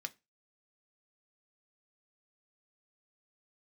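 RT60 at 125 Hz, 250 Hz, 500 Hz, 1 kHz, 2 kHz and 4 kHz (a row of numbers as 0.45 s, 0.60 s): 0.25 s, 0.30 s, 0.25 s, 0.25 s, 0.25 s, 0.20 s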